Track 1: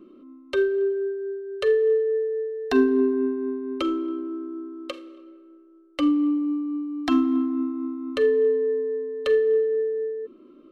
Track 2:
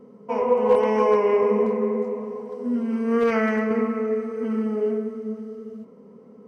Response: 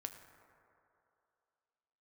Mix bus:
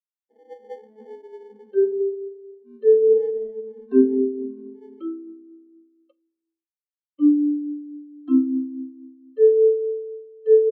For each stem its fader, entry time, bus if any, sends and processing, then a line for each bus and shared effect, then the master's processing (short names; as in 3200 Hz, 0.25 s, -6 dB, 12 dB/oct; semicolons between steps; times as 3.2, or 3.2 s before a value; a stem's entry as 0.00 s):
+2.5 dB, 1.20 s, no send, dry
-6.0 dB, 0.00 s, no send, sample-and-hold 34×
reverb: off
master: gate with hold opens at -37 dBFS; high shelf 2100 Hz +3 dB; spectral expander 2.5:1